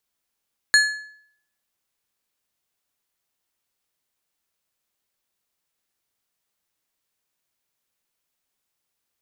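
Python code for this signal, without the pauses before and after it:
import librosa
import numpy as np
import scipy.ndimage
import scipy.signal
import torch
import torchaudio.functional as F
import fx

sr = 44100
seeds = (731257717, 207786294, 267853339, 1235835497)

y = fx.strike_metal(sr, length_s=1.55, level_db=-10.5, body='plate', hz=1710.0, decay_s=0.64, tilt_db=5.0, modes=5)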